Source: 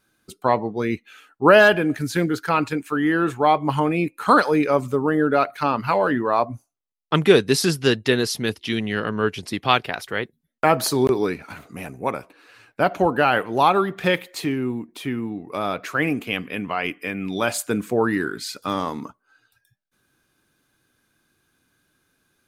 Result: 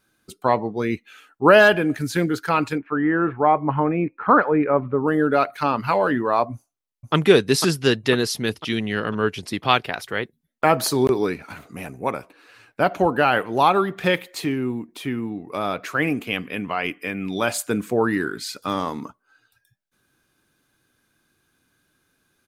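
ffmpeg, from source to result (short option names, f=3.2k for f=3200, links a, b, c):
-filter_complex "[0:a]asettb=1/sr,asplit=3[a][b][c];[a]atrim=end=2.784[d];[b]atrim=start=2.78:end=5.07,asetpts=PTS-STARTPTS,afade=t=in:d=0.004:c=qsin,afade=t=out:st=2.286:d=0.004:c=qsin,lowpass=f=2k:w=0.5412,lowpass=f=2k:w=1.3066[e];[c]atrim=start=5.066[f];[d][e]acrossfade=d=0.004:c1=hsin:c2=qsin[g];[g][f]acrossfade=d=0.004:c1=qsin:c2=hsin,asplit=2[h][i];[i]afade=t=in:st=6.53:d=0.01,afade=t=out:st=7.14:d=0.01,aecho=0:1:500|1000|1500|2000|2500|3000|3500:0.630957|0.347027|0.190865|0.104976|0.0577365|0.0317551|0.0174653[j];[h][j]amix=inputs=2:normalize=0"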